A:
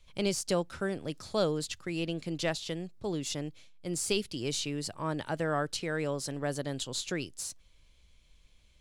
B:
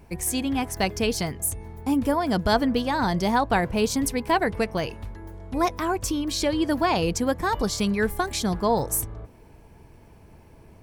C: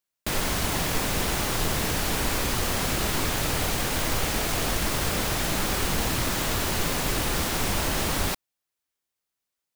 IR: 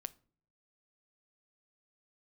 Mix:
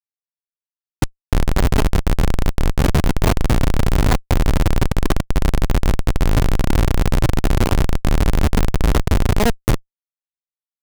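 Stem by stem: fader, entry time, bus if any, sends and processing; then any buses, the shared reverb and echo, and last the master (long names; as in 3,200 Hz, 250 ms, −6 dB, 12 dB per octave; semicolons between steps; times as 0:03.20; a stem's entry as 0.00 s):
muted
−0.5 dB, 0.75 s, send −5.5 dB, no processing
+1.0 dB, 1.05 s, no send, Butterworth low-pass 570 Hz 36 dB per octave; spectral tilt −3.5 dB per octave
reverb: on, pre-delay 7 ms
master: comparator with hysteresis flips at −14 dBFS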